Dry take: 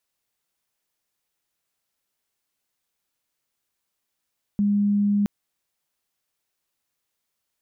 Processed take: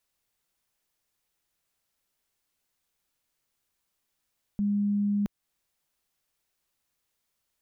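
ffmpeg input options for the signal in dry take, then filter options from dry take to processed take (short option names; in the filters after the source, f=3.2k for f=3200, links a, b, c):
-f lavfi -i "aevalsrc='0.133*sin(2*PI*204*t)':d=0.67:s=44100"
-af "lowshelf=f=75:g=8.5,alimiter=limit=-23dB:level=0:latency=1:release=262"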